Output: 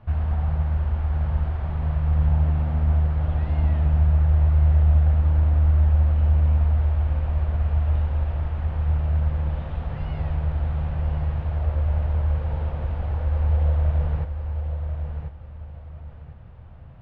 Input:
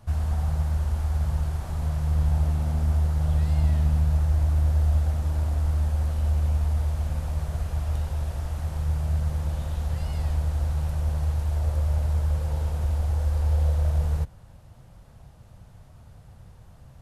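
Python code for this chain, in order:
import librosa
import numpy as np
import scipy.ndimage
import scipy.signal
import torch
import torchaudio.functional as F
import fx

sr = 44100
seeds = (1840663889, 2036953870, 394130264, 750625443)

p1 = scipy.signal.sosfilt(scipy.signal.butter(4, 2900.0, 'lowpass', fs=sr, output='sos'), x)
p2 = p1 + fx.echo_feedback(p1, sr, ms=1041, feedback_pct=27, wet_db=-7.5, dry=0)
y = F.gain(torch.from_numpy(p2), 2.0).numpy()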